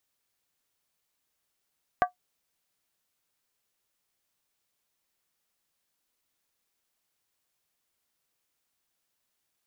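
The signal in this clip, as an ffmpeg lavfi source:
-f lavfi -i "aevalsrc='0.178*pow(10,-3*t/0.12)*sin(2*PI*725*t)+0.1*pow(10,-3*t/0.095)*sin(2*PI*1155.7*t)+0.0562*pow(10,-3*t/0.082)*sin(2*PI*1548.6*t)+0.0316*pow(10,-3*t/0.079)*sin(2*PI*1664.6*t)+0.0178*pow(10,-3*t/0.074)*sin(2*PI*1923.4*t)':d=0.63:s=44100"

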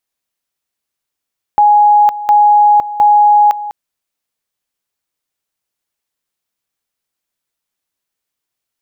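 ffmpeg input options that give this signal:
-f lavfi -i "aevalsrc='pow(10,(-4.5-15*gte(mod(t,0.71),0.51))/20)*sin(2*PI*832*t)':d=2.13:s=44100"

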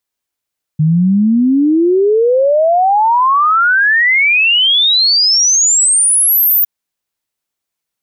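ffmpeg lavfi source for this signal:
-f lavfi -i "aevalsrc='0.422*clip(min(t,5.86-t)/0.01,0,1)*sin(2*PI*150*5.86/log(15000/150)*(exp(log(15000/150)*t/5.86)-1))':d=5.86:s=44100"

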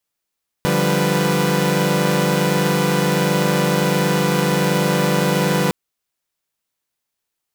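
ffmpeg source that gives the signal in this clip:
-f lavfi -i "aevalsrc='0.119*((2*mod(146.83*t,1)-1)+(2*mod(174.61*t,1)-1)+(2*mod(196*t,1)-1)+(2*mod(493.88*t,1)-1))':d=5.06:s=44100"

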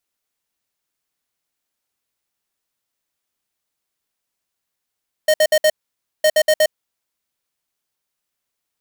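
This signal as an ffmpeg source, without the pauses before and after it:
-f lavfi -i "aevalsrc='0.224*(2*lt(mod(618*t,1),0.5)-1)*clip(min(mod(mod(t,0.96),0.12),0.06-mod(mod(t,0.96),0.12))/0.005,0,1)*lt(mod(t,0.96),0.48)':d=1.92:s=44100"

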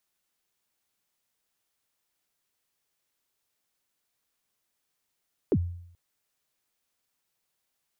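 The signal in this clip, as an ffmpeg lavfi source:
-f lavfi -i "aevalsrc='0.133*pow(10,-3*t/0.69)*sin(2*PI*(480*0.056/log(87/480)*(exp(log(87/480)*min(t,0.056)/0.056)-1)+87*max(t-0.056,0)))':d=0.43:s=44100"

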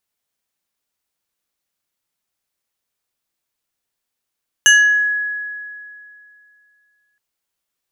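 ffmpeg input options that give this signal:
-f lavfi -i "aevalsrc='0.531*pow(10,-3*t/2.52)*sin(2*PI*1680*t+1.3*pow(10,-3*t/0.57)*sin(2*PI*2.73*1680*t))':d=2.52:s=44100"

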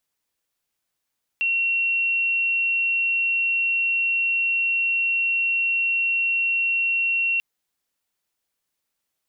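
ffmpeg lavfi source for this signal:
-f lavfi -i "aevalsrc='0.112*sin(2*PI*2730*t)':d=5.99:s=44100"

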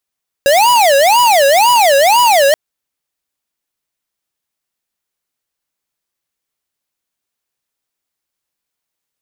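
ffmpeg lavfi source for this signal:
-f lavfi -i "aevalsrc='0.355*(2*lt(mod((765.5*t-216.5/(2*PI*2)*sin(2*PI*2*t)),1),0.5)-1)':d=2.08:s=44100"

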